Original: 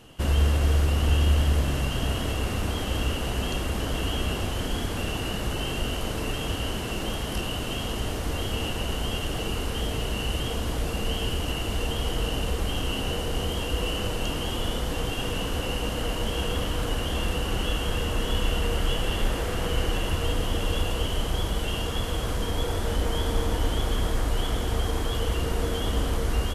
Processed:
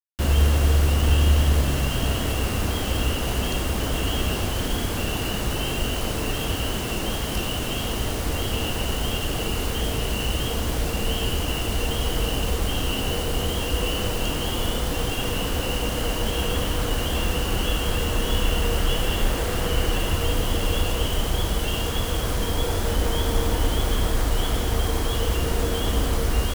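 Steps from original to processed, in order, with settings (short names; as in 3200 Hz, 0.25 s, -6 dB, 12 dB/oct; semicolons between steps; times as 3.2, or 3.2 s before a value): requantised 6-bit, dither none; gain +3 dB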